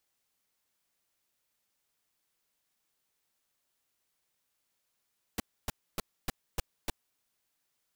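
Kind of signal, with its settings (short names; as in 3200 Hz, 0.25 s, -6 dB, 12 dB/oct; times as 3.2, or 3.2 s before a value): noise bursts pink, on 0.02 s, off 0.28 s, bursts 6, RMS -31 dBFS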